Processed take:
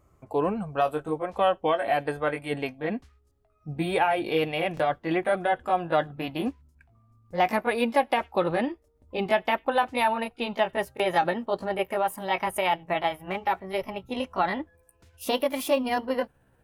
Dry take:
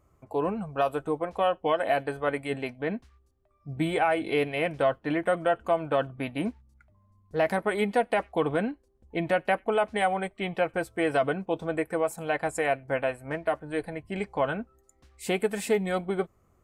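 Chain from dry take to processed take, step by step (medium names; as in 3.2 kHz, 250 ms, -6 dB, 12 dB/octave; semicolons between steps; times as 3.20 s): pitch bend over the whole clip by +5 st starting unshifted; buffer glitch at 4.75/10.95 s, samples 1024, times 1; trim +2.5 dB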